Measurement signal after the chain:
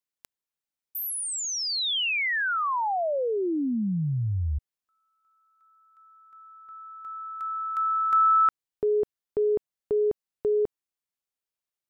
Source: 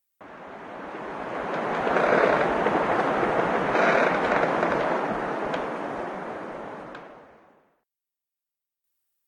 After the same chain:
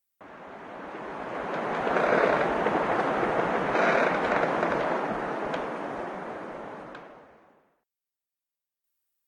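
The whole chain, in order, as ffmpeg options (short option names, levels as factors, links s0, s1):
-filter_complex "[0:a]acrossover=split=3600[s0][s1];[s1]acompressor=threshold=0.0398:ratio=4:attack=1:release=60[s2];[s0][s2]amix=inputs=2:normalize=0,volume=0.75"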